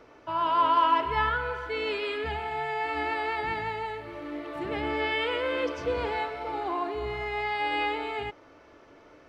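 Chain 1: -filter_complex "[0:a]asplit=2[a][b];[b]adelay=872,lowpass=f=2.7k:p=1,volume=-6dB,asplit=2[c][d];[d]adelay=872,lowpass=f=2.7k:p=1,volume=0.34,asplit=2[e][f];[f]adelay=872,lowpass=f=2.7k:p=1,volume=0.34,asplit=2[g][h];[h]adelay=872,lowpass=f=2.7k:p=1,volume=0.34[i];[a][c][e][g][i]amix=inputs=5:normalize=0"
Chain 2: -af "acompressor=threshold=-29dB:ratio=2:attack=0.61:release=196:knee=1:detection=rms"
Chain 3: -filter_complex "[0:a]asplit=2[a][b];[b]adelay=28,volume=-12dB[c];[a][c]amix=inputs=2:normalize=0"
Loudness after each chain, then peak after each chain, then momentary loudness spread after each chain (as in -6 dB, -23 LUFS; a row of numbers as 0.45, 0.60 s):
-28.5, -33.0, -29.0 LUFS; -12.5, -20.0, -13.0 dBFS; 10, 7, 10 LU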